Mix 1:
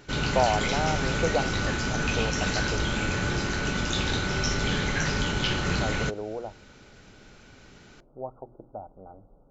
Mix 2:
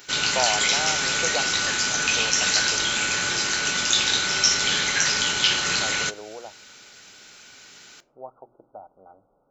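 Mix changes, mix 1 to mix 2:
background: send +11.5 dB
master: add spectral tilt +4.5 dB per octave

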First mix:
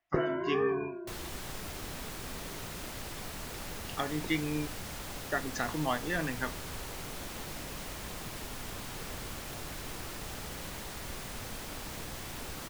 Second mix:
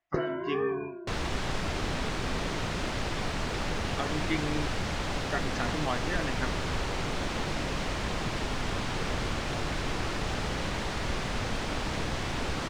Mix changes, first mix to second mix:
first sound: remove Savitzky-Golay smoothing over 25 samples
second sound +11.0 dB
master: add high-frequency loss of the air 110 metres

